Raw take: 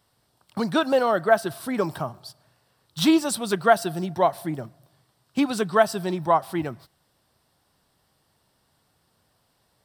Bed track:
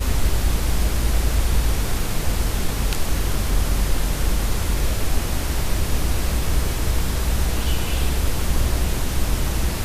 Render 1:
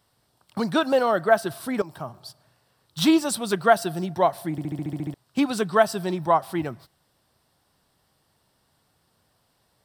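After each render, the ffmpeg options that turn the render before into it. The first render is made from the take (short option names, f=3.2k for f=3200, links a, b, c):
-filter_complex "[0:a]asplit=11[a][b][c][d][e][f][g][h][i][j][k];[a]atrim=end=1.82,asetpts=PTS-STARTPTS,afade=t=out:st=1.816:d=0.004:c=hsin:silence=0.158489[l];[b]atrim=start=1.82:end=4.582,asetpts=PTS-STARTPTS,afade=t=in:d=0.43:silence=0.158489[m];[c]atrim=start=4.508:end=4.582[n];[d]atrim=start=4.508:end=4.582[o];[e]atrim=start=4.508:end=4.582[p];[f]atrim=start=4.508:end=4.582[q];[g]atrim=start=4.508:end=4.582[r];[h]atrim=start=4.508:end=4.582[s];[i]atrim=start=4.508:end=4.582[t];[j]atrim=start=4.508:end=4.582[u];[k]atrim=start=5.138[v];[l][m]concat=n=2:v=0:a=1[w];[w][n]acrossfade=d=0.004:c1=hsin:c2=hsin[x];[x][o]acrossfade=d=0.004:c1=hsin:c2=hsin[y];[y][p]acrossfade=d=0.004:c1=hsin:c2=hsin[z];[z][q]acrossfade=d=0.004:c1=hsin:c2=hsin[aa];[aa][r]acrossfade=d=0.004:c1=hsin:c2=hsin[ab];[ab][s]acrossfade=d=0.004:c1=hsin:c2=hsin[ac];[ac][t]acrossfade=d=0.004:c1=hsin:c2=hsin[ad];[ad][u]acrossfade=d=0.004:c1=hsin:c2=hsin[ae];[ae][v]acrossfade=d=0.004:c1=hsin:c2=hsin"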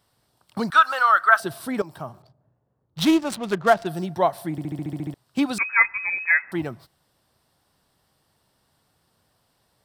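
-filter_complex "[0:a]asettb=1/sr,asplit=3[a][b][c];[a]atrim=end=0.704[d];[b]atrim=start=0.7:end=1.4,asetpts=PTS-STARTPTS,afade=t=in:d=0.004:c=qsin,afade=t=out:st=0.696:d=0.004:c=qsin,highpass=f=1.3k:t=q:w=5.6[e];[c]atrim=start=1.396[f];[d][e]acrossfade=d=0.004:c1=hsin:c2=qsin[g];[g][f]acrossfade=d=0.004:c1=qsin:c2=hsin,asettb=1/sr,asplit=3[h][i][j];[h]atrim=end=2.224[k];[i]atrim=start=2.22:end=3.87,asetpts=PTS-STARTPTS,afade=t=in:d=0.004:c=qsin,afade=t=out:st=1.646:d=0.004:c=qsin,adynamicsmooth=sensitivity=6.5:basefreq=550[l];[j]atrim=start=3.866[m];[k][l]acrossfade=d=0.004:c1=hsin:c2=qsin[n];[n][m]acrossfade=d=0.004:c1=qsin:c2=hsin,asettb=1/sr,asplit=3[o][p][q];[o]atrim=end=5.584[r];[p]atrim=start=5.58:end=6.52,asetpts=PTS-STARTPTS,afade=t=in:d=0.004:c=qsin,afade=t=out:st=0.936:d=0.004:c=qsin,lowpass=f=2.3k:t=q:w=0.5098,lowpass=f=2.3k:t=q:w=0.6013,lowpass=f=2.3k:t=q:w=0.9,lowpass=f=2.3k:t=q:w=2.563,afreqshift=-2700[s];[q]atrim=start=6.516[t];[r][s]acrossfade=d=0.004:c1=hsin:c2=qsin[u];[u][t]acrossfade=d=0.004:c1=qsin:c2=hsin"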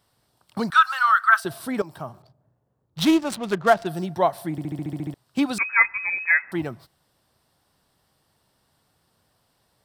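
-filter_complex "[0:a]asettb=1/sr,asplit=3[a][b][c];[a]atrim=end=0.744[d];[b]atrim=start=0.74:end=1.45,asetpts=PTS-STARTPTS,afade=t=in:d=0.004:c=qsin,afade=t=out:st=0.706:d=0.004:c=qsin,highpass=f=1k:w=0.5412,highpass=f=1k:w=1.3066[e];[c]atrim=start=1.446[f];[d][e]acrossfade=d=0.004:c1=hsin:c2=qsin[g];[g][f]acrossfade=d=0.004:c1=qsin:c2=hsin"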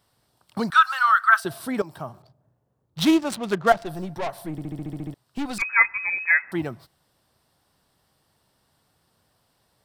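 -filter_complex "[0:a]asettb=1/sr,asplit=3[a][b][c];[a]atrim=end=3.724[d];[b]atrim=start=3.72:end=5.62,asetpts=PTS-STARTPTS,afade=t=in:d=0.004:c=qsin,afade=t=out:st=1.896:d=0.004:c=qsin,aeval=exprs='(tanh(17.8*val(0)+0.5)-tanh(0.5))/17.8':c=same[e];[c]atrim=start=5.616[f];[d][e]acrossfade=d=0.004:c1=hsin:c2=qsin[g];[g][f]acrossfade=d=0.004:c1=qsin:c2=hsin"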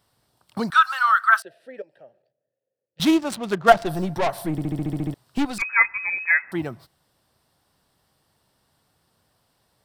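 -filter_complex "[0:a]asettb=1/sr,asplit=3[a][b][c];[a]atrim=end=1.424[d];[b]atrim=start=1.42:end=3,asetpts=PTS-STARTPTS,afade=t=in:d=0.004:c=qsin,afade=t=out:st=1.576:d=0.004:c=qsin,asplit=3[e][f][g];[e]bandpass=f=530:t=q:w=8,volume=0dB[h];[f]bandpass=f=1.84k:t=q:w=8,volume=-6dB[i];[g]bandpass=f=2.48k:t=q:w=8,volume=-9dB[j];[h][i][j]amix=inputs=3:normalize=0[k];[c]atrim=start=2.996[l];[d][k]acrossfade=d=0.004:c1=hsin:c2=qsin[m];[m][l]acrossfade=d=0.004:c1=qsin:c2=hsin,asettb=1/sr,asplit=3[n][o][p];[n]atrim=end=3.684[q];[o]atrim=start=3.68:end=5.45,asetpts=PTS-STARTPTS,afade=t=in:d=0.004:c=qsin,afade=t=out:st=1.766:d=0.004:c=qsin,acontrast=61[r];[p]atrim=start=5.446[s];[q][r]acrossfade=d=0.004:c1=hsin:c2=qsin[t];[t][s]acrossfade=d=0.004:c1=qsin:c2=hsin"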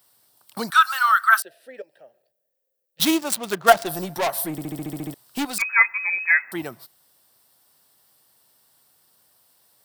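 -af "aemphasis=mode=production:type=bsi"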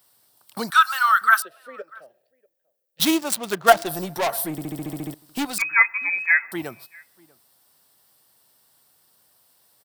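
-filter_complex "[0:a]asplit=2[a][b];[b]adelay=641.4,volume=-26dB,highshelf=f=4k:g=-14.4[c];[a][c]amix=inputs=2:normalize=0"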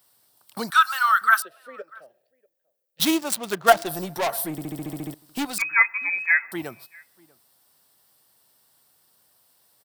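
-af "volume=-1.5dB"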